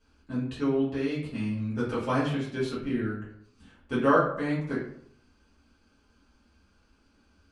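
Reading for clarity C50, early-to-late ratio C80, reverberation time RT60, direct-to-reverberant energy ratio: 4.0 dB, 7.5 dB, 0.65 s, -10.0 dB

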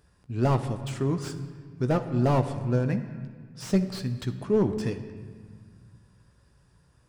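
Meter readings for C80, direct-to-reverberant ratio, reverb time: 11.5 dB, 7.0 dB, 1.8 s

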